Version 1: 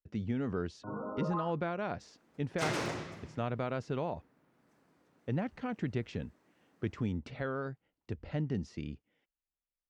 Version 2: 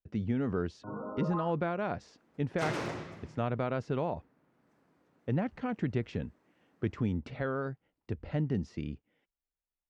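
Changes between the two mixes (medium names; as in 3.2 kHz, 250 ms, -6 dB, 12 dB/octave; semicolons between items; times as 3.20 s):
speech +3.0 dB; master: add treble shelf 3.5 kHz -7 dB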